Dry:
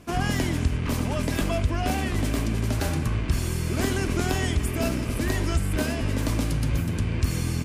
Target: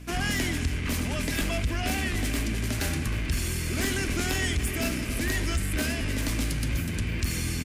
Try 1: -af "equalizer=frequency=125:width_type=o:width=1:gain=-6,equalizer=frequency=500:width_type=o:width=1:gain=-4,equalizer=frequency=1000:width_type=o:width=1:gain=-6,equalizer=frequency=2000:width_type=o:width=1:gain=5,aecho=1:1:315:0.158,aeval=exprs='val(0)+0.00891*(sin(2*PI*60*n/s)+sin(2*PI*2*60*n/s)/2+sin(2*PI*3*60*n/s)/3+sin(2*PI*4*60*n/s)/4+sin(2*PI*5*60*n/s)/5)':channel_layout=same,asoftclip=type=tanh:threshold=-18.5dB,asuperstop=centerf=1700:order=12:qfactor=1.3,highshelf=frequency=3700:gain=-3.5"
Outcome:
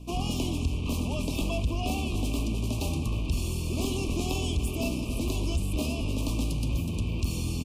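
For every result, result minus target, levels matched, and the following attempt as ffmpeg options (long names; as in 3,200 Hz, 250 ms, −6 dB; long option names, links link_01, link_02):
2,000 Hz band −9.0 dB; 8,000 Hz band −4.5 dB
-af "equalizer=frequency=125:width_type=o:width=1:gain=-6,equalizer=frequency=500:width_type=o:width=1:gain=-4,equalizer=frequency=1000:width_type=o:width=1:gain=-6,equalizer=frequency=2000:width_type=o:width=1:gain=5,aecho=1:1:315:0.158,aeval=exprs='val(0)+0.00891*(sin(2*PI*60*n/s)+sin(2*PI*2*60*n/s)/2+sin(2*PI*3*60*n/s)/3+sin(2*PI*4*60*n/s)/4+sin(2*PI*5*60*n/s)/5)':channel_layout=same,asoftclip=type=tanh:threshold=-18.5dB,highshelf=frequency=3700:gain=-3.5"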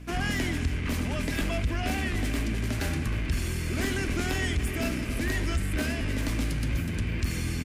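8,000 Hz band −5.0 dB
-af "equalizer=frequency=125:width_type=o:width=1:gain=-6,equalizer=frequency=500:width_type=o:width=1:gain=-4,equalizer=frequency=1000:width_type=o:width=1:gain=-6,equalizer=frequency=2000:width_type=o:width=1:gain=5,aecho=1:1:315:0.158,aeval=exprs='val(0)+0.00891*(sin(2*PI*60*n/s)+sin(2*PI*2*60*n/s)/2+sin(2*PI*3*60*n/s)/3+sin(2*PI*4*60*n/s)/4+sin(2*PI*5*60*n/s)/5)':channel_layout=same,asoftclip=type=tanh:threshold=-18.5dB,highshelf=frequency=3700:gain=4"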